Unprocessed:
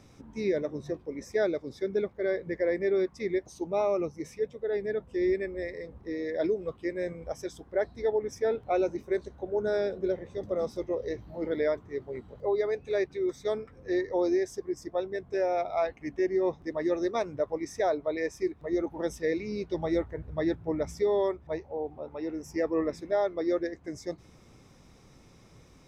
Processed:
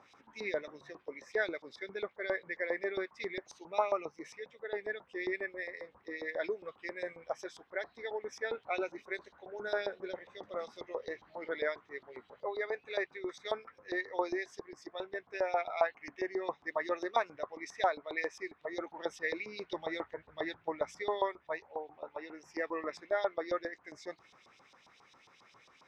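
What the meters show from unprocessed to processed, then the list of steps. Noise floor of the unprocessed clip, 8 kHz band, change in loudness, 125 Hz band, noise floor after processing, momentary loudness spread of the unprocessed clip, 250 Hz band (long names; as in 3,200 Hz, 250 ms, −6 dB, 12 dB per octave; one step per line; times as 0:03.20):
−56 dBFS, can't be measured, −7.0 dB, below −15 dB, −67 dBFS, 9 LU, −13.0 dB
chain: auto-filter band-pass saw up 7.4 Hz 870–4,200 Hz
level +7.5 dB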